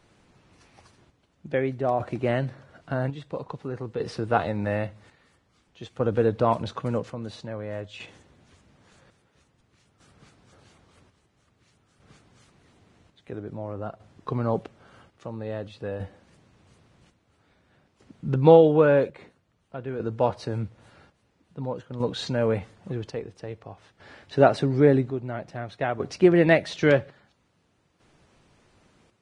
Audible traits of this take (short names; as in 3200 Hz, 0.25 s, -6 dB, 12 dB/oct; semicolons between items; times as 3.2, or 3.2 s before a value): chopped level 0.5 Hz, depth 60%, duty 55%; Vorbis